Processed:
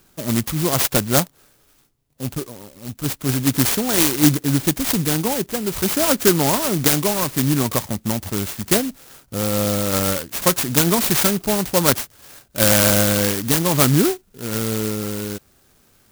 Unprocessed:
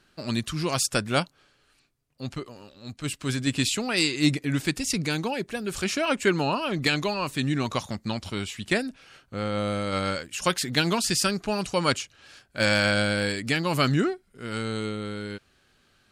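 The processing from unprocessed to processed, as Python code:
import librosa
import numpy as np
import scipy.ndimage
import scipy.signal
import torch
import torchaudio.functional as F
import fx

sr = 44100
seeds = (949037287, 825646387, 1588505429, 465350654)

y = fx.clock_jitter(x, sr, seeds[0], jitter_ms=0.15)
y = y * librosa.db_to_amplitude(7.5)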